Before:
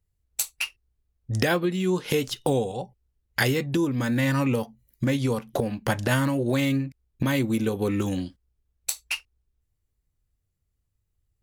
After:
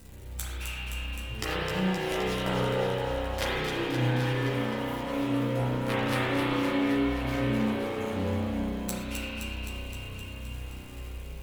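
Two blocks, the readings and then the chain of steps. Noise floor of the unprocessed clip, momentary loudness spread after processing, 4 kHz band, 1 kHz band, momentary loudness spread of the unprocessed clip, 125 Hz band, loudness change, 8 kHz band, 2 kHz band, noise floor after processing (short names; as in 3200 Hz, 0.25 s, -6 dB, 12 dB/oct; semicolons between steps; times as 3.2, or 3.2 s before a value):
-77 dBFS, 12 LU, -1.0 dB, +0.5 dB, 9 LU, -3.0 dB, -4.0 dB, -8.0 dB, -2.5 dB, -40 dBFS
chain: zero-crossing step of -29.5 dBFS; added harmonics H 3 -7 dB, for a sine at -7.5 dBFS; on a send: echo with dull and thin repeats by turns 0.13 s, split 810 Hz, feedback 84%, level -4 dB; on the sum: spring tank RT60 2.9 s, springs 32 ms, chirp 80 ms, DRR -8.5 dB; chorus voices 4, 0.21 Hz, delay 14 ms, depth 4.4 ms; gain -1.5 dB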